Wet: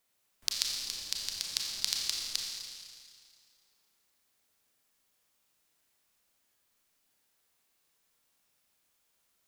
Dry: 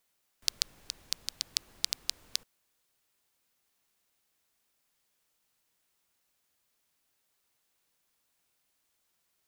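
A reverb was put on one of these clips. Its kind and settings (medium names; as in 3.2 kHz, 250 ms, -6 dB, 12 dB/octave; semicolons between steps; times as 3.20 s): Schroeder reverb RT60 2.1 s, combs from 28 ms, DRR -1 dB; trim -1.5 dB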